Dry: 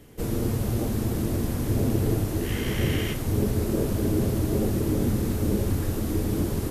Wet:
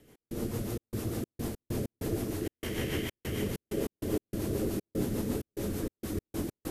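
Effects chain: two-band feedback delay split 340 Hz, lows 114 ms, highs 342 ms, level -4 dB; rotary cabinet horn 6.7 Hz; trance gate "x.xxx.xx.x.x.xx" 97 bpm -60 dB; bass shelf 170 Hz -9.5 dB; trim -4 dB

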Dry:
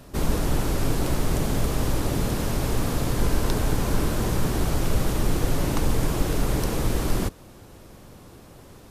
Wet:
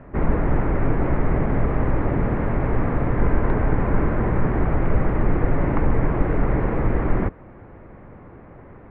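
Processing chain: elliptic low-pass 2.1 kHz, stop band 80 dB; trim +4.5 dB

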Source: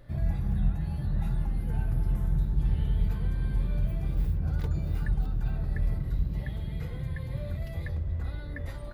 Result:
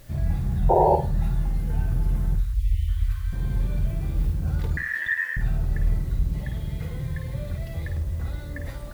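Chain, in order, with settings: 0.69–0.96 s: painted sound noise 330–980 Hz -21 dBFS; 2.35–3.33 s: Chebyshev band-stop 110–1100 Hz, order 5; 4.77–5.37 s: ring modulator 1.8 kHz; word length cut 10-bit, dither triangular; 2.54–2.88 s: spectral selection erased 510–1800 Hz; flutter echo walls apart 8.9 m, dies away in 0.35 s; trim +3 dB

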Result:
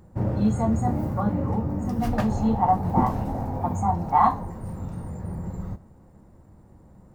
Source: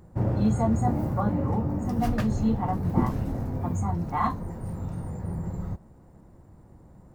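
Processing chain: 2.13–4.45 s: peaking EQ 810 Hz +12.5 dB 0.71 oct; reverberation, pre-delay 3 ms, DRR 12.5 dB

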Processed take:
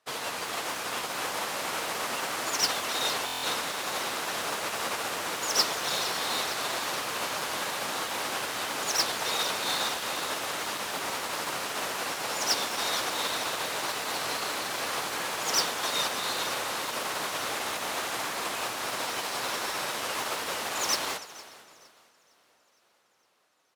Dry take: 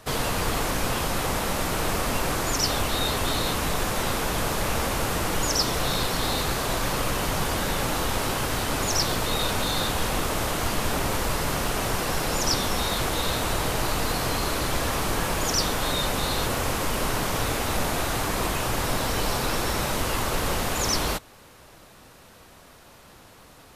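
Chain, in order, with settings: two-band feedback delay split 640 Hz, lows 724 ms, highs 292 ms, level -12 dB; in parallel at -5 dB: integer overflow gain 19.5 dB; on the sum: frequency weighting A; on a send: frequency-shifting echo 460 ms, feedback 64%, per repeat +34 Hz, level -9.5 dB; on the sum: buffer glitch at 3.25 s, samples 1024, times 7; upward expansion 2.5:1, over -37 dBFS

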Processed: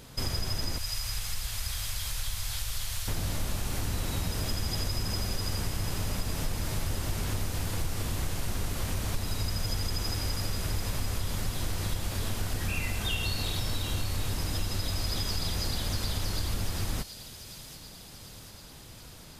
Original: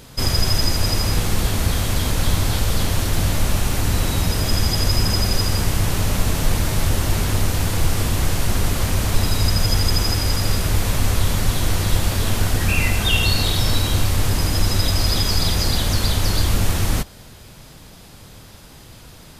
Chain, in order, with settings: 0.78–3.08 s: amplifier tone stack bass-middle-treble 10-0-10; compression 3:1, threshold -22 dBFS, peak gain reduction 9.5 dB; feedback echo behind a high-pass 740 ms, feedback 60%, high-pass 3.3 kHz, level -8 dB; trim -6.5 dB

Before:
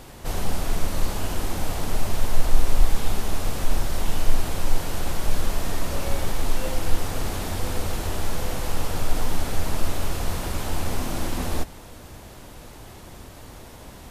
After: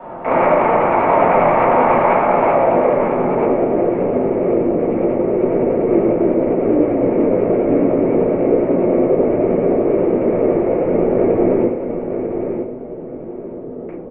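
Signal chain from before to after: rattle on loud lows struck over -34 dBFS, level -14 dBFS; dynamic bell 910 Hz, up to +5 dB, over -42 dBFS, Q 0.87; in parallel at +2.5 dB: peak limiter -13.5 dBFS, peak gain reduction 11.5 dB; on the sum: mistuned SSB -220 Hz 480–3400 Hz; 1.29–1.78 s: short-mantissa float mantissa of 4-bit; low-pass sweep 920 Hz -> 410 Hz, 2.42–3.09 s; feedback delay 950 ms, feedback 22%, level -7.5 dB; reverberation RT60 0.45 s, pre-delay 3 ms, DRR -8 dB; vibrato 10 Hz 41 cents; trim -2.5 dB

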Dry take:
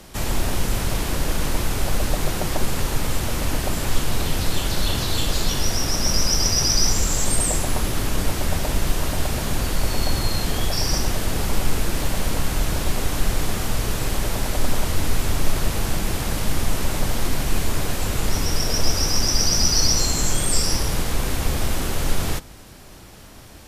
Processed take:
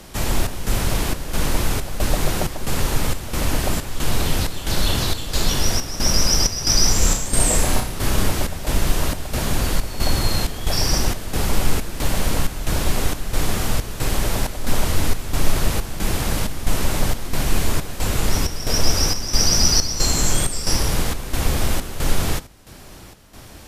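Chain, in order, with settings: square tremolo 1.5 Hz, depth 65%, duty 70%; 6.98–8.28 s: flutter echo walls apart 5.5 m, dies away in 0.38 s; trim +2.5 dB

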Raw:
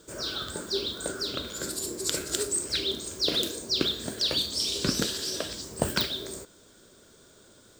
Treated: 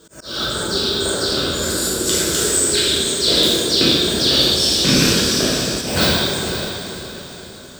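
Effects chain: rattle on loud lows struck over -26 dBFS, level -16 dBFS; plate-style reverb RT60 2.2 s, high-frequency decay 0.6×, DRR -9.5 dB; slow attack 232 ms; echo that smears into a reverb 503 ms, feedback 41%, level -9 dB; trim +3.5 dB

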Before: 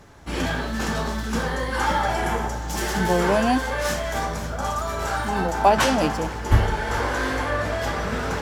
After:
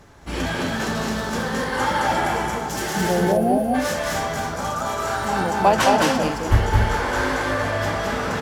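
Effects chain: time-frequency box 3.11–3.74 s, 860–8800 Hz -18 dB; on a send: loudspeakers at several distances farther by 74 m -2 dB, 90 m -9 dB

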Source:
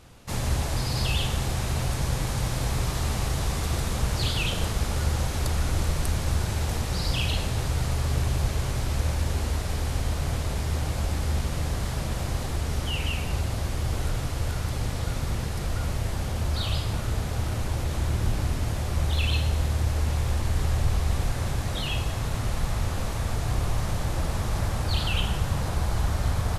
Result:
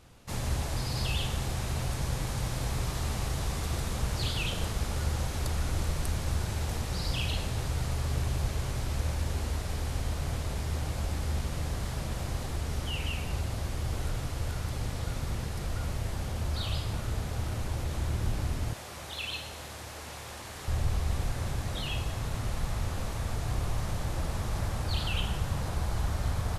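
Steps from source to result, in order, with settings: 18.73–20.68 s: high-pass 630 Hz 6 dB/octave; trim -5 dB

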